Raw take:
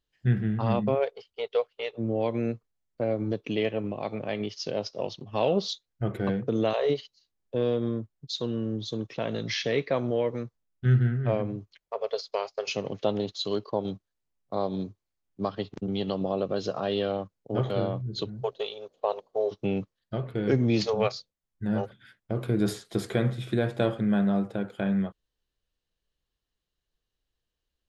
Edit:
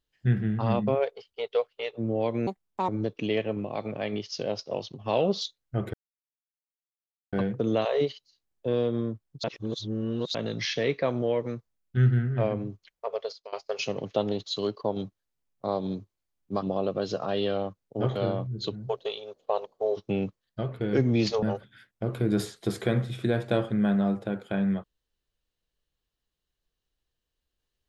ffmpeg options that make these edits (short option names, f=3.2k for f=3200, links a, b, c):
-filter_complex "[0:a]asplit=9[a][b][c][d][e][f][g][h][i];[a]atrim=end=2.474[j];[b]atrim=start=2.47:end=3.16,asetpts=PTS-STARTPTS,asetrate=73206,aresample=44100[k];[c]atrim=start=3.156:end=6.21,asetpts=PTS-STARTPTS,afade=t=out:st=3.05:d=0.004:c=hsin,apad=pad_dur=1.39[l];[d]atrim=start=6.21:end=8.322,asetpts=PTS-STARTPTS,afade=t=in:d=0.004:c=hsin[m];[e]atrim=start=8.318:end=9.232,asetpts=PTS-STARTPTS,areverse[n];[f]atrim=start=9.228:end=12.41,asetpts=PTS-STARTPTS,afade=t=out:st=2.772:d=0.41:silence=0.0749894[o];[g]atrim=start=12.41:end=15.512,asetpts=PTS-STARTPTS,afade=t=in:d=0.004:c=hsin:silence=0.0749894[p];[h]atrim=start=16.168:end=20.972[q];[i]atrim=start=21.708[r];[j][k]acrossfade=d=0.004:c1=hsin:c2=hsin[s];[l][m]concat=n=2:v=0:a=1[t];[s][t]acrossfade=d=0.004:c1=hsin:c2=hsin[u];[u][n]acrossfade=d=0.004:c1=hsin:c2=hsin[v];[o][p]concat=n=2:v=0:a=1[w];[v][w]acrossfade=d=0.004:c1=hsin:c2=hsin[x];[x][q]acrossfade=d=0.004:c1=hsin:c2=hsin[y];[y][r]acrossfade=d=0.004:c1=hsin:c2=hsin"